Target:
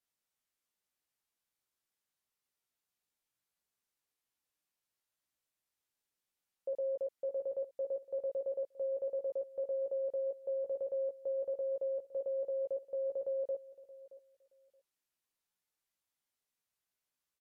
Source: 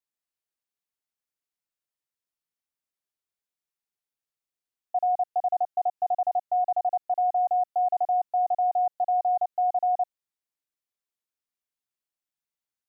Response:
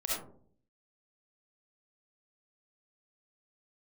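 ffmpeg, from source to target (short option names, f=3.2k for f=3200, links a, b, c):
-filter_complex "[0:a]alimiter=level_in=7.5dB:limit=-24dB:level=0:latency=1:release=17,volume=-7.5dB,asplit=2[a][b];[b]adelay=12,volume=-4.5dB[c];[a][c]amix=inputs=2:normalize=0,aecho=1:1:462|924:0.126|0.0214,asetrate=32667,aresample=44100"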